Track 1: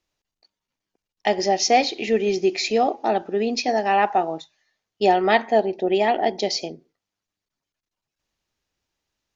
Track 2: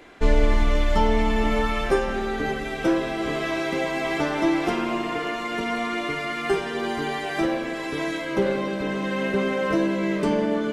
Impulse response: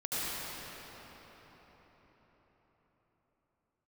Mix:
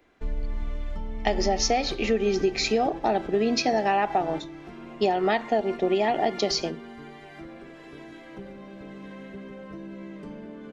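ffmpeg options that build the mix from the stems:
-filter_complex "[0:a]dynaudnorm=f=670:g=3:m=5dB,volume=-3dB,asplit=2[a][b];[1:a]highshelf=f=6.8k:g=-6.5,acrossover=split=230[c][d];[d]acompressor=threshold=-28dB:ratio=6[e];[c][e]amix=inputs=2:normalize=0,volume=-7.5dB,asplit=2[f][g];[g]volume=-16dB[h];[b]apad=whole_len=473041[i];[f][i]sidechaingate=range=-8dB:threshold=-29dB:ratio=16:detection=peak[j];[h]aecho=0:1:1117:1[k];[a][j][k]amix=inputs=3:normalize=0,lowshelf=f=210:g=5.5,acompressor=threshold=-19dB:ratio=10"

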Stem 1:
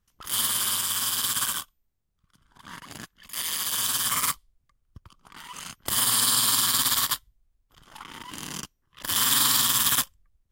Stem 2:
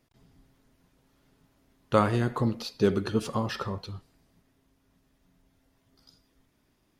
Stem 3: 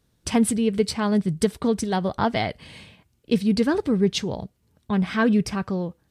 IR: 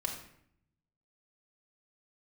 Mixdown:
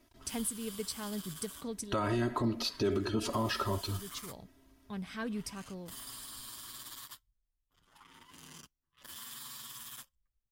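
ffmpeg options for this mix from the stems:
-filter_complex "[0:a]acompressor=threshold=-29dB:ratio=3,volume=24dB,asoftclip=hard,volume=-24dB,asplit=2[a][b];[b]adelay=8,afreqshift=-0.26[c];[a][c]amix=inputs=2:normalize=1,volume=-13dB[d];[1:a]aecho=1:1:3.1:0.96,alimiter=limit=-17dB:level=0:latency=1:release=15,volume=1.5dB,asplit=2[e][f];[2:a]aemphasis=mode=production:type=75kf,volume=-18.5dB[g];[f]apad=whole_len=269105[h];[g][h]sidechaincompress=threshold=-44dB:ratio=8:attack=16:release=459[i];[d][e][i]amix=inputs=3:normalize=0,alimiter=limit=-22.5dB:level=0:latency=1:release=164"

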